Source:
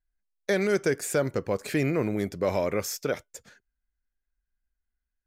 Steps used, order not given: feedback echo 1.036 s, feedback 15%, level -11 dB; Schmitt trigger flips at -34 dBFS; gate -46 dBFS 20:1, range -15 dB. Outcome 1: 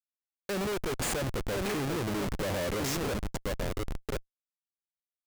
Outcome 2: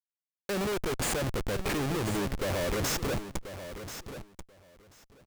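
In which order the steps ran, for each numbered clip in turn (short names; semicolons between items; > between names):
feedback echo > gate > Schmitt trigger; gate > Schmitt trigger > feedback echo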